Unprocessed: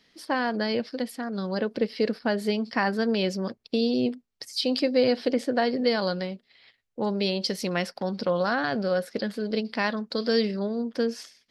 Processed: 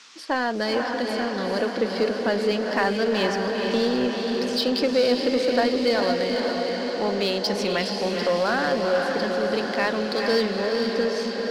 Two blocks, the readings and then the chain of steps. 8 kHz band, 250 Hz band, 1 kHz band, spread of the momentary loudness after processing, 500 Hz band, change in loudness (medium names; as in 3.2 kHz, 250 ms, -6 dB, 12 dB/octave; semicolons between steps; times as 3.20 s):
+5.0 dB, +1.5 dB, +4.5 dB, 4 LU, +4.5 dB, +3.5 dB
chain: three-band isolator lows -13 dB, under 220 Hz, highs -14 dB, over 8 kHz; echo that smears into a reverb 463 ms, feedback 67%, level -4.5 dB; band noise 950–6200 Hz -54 dBFS; in parallel at -3.5 dB: overload inside the chain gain 28 dB